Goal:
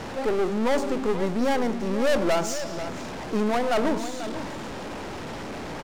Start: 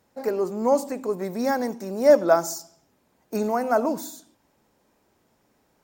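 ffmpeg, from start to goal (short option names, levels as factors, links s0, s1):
-af "aeval=exprs='val(0)+0.5*0.0398*sgn(val(0))':c=same,aeval=exprs='(tanh(15.8*val(0)+0.7)-tanh(0.7))/15.8':c=same,aecho=1:1:490:0.282,adynamicsmooth=sensitivity=7:basefreq=3000,volume=1.58"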